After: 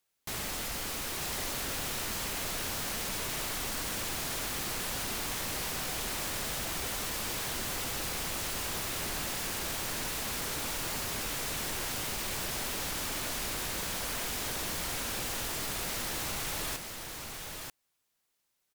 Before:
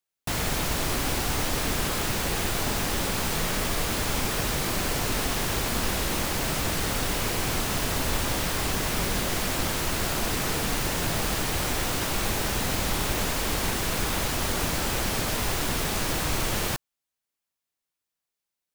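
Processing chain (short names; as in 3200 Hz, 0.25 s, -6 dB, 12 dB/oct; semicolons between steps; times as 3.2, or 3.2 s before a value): limiter -24.5 dBFS, peak gain reduction 11 dB; sine folder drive 11 dB, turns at -24.5 dBFS; on a send: echo 0.937 s -5.5 dB; on the sum: gain -8.5 dB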